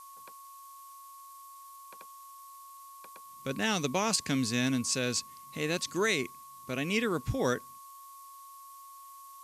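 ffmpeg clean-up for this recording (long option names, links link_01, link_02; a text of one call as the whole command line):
ffmpeg -i in.wav -af "adeclick=threshold=4,bandreject=frequency=1100:width=30,afftdn=noise_reduction=28:noise_floor=-50" out.wav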